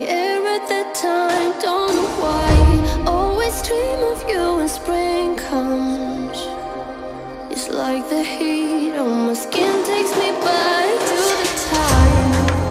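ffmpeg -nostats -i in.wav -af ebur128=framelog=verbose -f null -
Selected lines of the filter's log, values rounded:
Integrated loudness:
  I:         -18.3 LUFS
  Threshold: -28.5 LUFS
Loudness range:
  LRA:         6.1 LU
  Threshold: -39.0 LUFS
  LRA low:   -22.7 LUFS
  LRA high:  -16.6 LUFS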